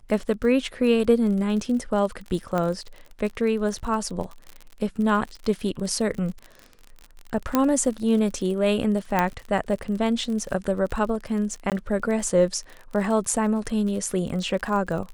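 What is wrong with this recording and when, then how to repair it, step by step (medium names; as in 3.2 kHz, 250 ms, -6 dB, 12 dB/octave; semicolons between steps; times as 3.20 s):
crackle 45 per s -31 dBFS
2.58 s: pop -14 dBFS
7.55 s: pop -6 dBFS
9.19 s: pop -8 dBFS
11.70–11.72 s: dropout 18 ms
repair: de-click; interpolate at 11.70 s, 18 ms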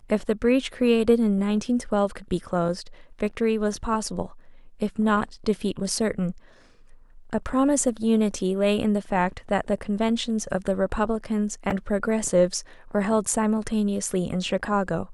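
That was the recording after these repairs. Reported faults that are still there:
nothing left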